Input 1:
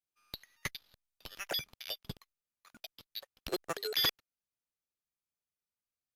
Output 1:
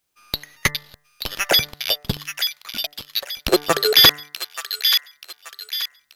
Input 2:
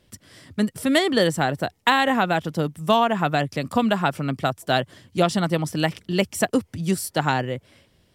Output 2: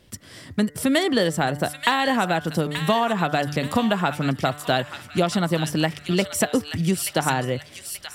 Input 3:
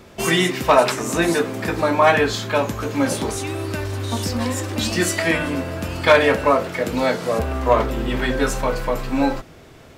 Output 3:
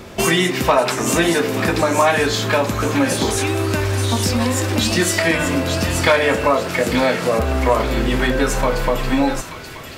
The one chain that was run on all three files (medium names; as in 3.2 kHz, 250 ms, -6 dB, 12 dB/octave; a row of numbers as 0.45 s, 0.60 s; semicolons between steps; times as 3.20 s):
de-hum 147.3 Hz, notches 14; compression 2.5:1, threshold -25 dBFS; on a send: feedback echo behind a high-pass 881 ms, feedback 37%, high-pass 1.8 kHz, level -5.5 dB; on the sum: peak normalisation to -1.5 dBFS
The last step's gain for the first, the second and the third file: +19.5 dB, +5.5 dB, +8.5 dB